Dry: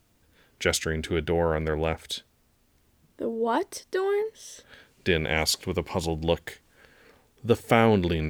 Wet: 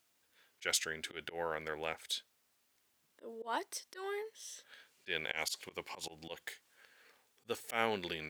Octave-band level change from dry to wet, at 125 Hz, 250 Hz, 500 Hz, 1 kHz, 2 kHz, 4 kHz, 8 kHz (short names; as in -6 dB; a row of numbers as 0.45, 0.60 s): -26.5, -21.0, -16.5, -11.5, -9.0, -8.5, -7.0 dB